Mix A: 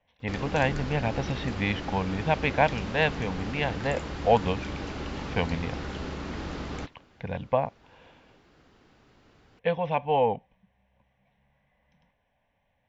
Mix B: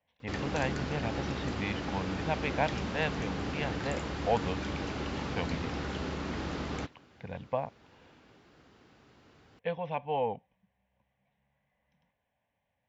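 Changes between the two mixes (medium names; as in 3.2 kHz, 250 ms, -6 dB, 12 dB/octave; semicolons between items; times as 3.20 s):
speech -7.5 dB; master: add high-pass 62 Hz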